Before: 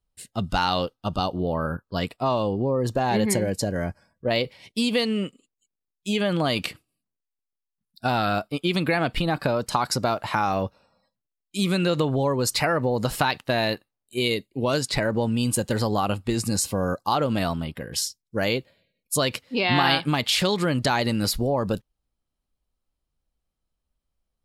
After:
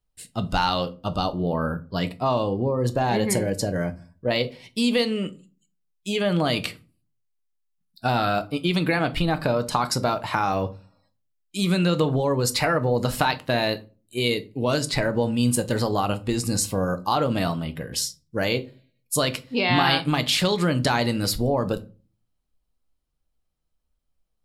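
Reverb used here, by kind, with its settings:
rectangular room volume 170 cubic metres, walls furnished, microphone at 0.49 metres

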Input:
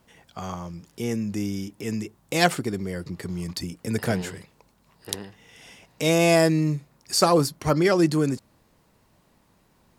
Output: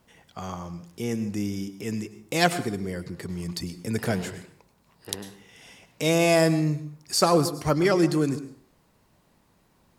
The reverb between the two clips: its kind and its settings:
dense smooth reverb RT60 0.53 s, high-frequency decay 0.75×, pre-delay 90 ms, DRR 13.5 dB
level −1.5 dB

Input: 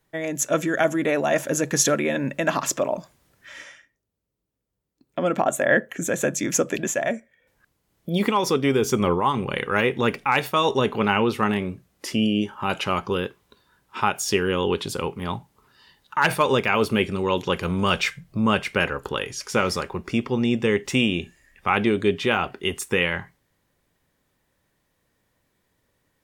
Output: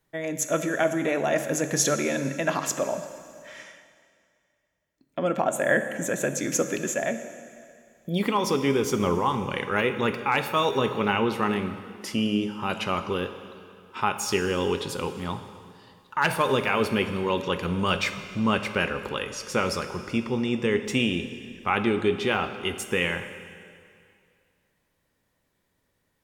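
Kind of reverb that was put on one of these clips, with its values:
dense smooth reverb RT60 2.3 s, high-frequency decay 0.95×, DRR 8.5 dB
level −3.5 dB

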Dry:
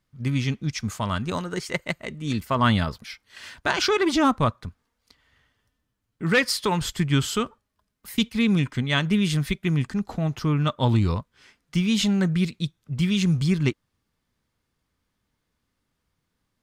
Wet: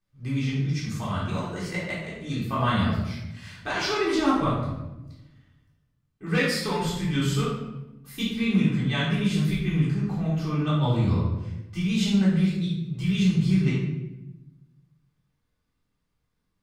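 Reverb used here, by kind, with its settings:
rectangular room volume 400 cubic metres, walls mixed, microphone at 3.7 metres
level −13 dB

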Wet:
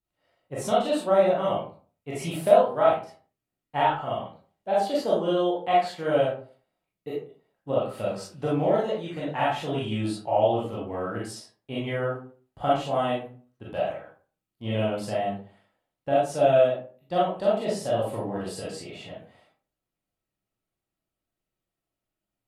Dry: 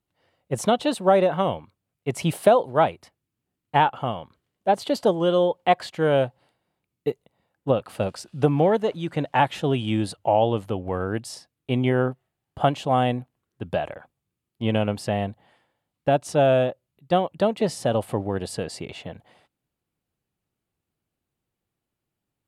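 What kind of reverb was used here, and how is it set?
comb and all-pass reverb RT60 0.42 s, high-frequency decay 0.6×, pre-delay 0 ms, DRR −8 dB
level −11.5 dB

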